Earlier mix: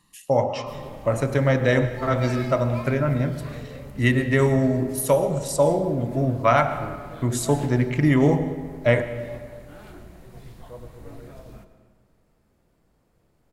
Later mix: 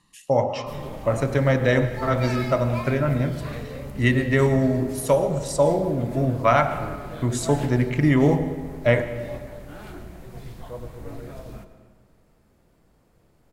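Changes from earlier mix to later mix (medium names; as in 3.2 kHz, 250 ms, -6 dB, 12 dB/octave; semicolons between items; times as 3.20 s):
speech: add low-pass 9.1 kHz; background +4.5 dB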